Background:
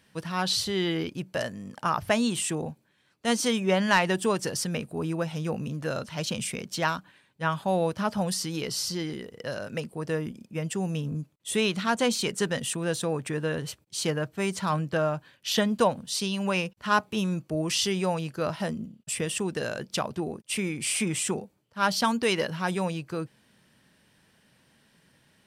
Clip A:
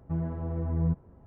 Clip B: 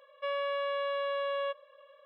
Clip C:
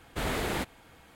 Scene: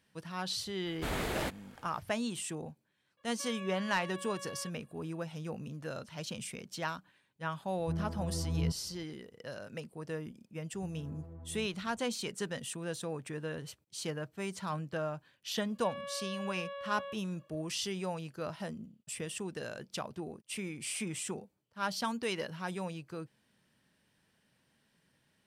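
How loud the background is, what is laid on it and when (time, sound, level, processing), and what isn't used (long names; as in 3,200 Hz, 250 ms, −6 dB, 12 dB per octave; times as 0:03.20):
background −10 dB
0:00.86: mix in C −4 dB
0:03.17: mix in B −10 dB + parametric band 590 Hz −8 dB 0.9 octaves
0:07.78: mix in A −5.5 dB
0:10.73: mix in A −8.5 dB + downward compressor, threshold −37 dBFS
0:15.61: mix in B −10 dB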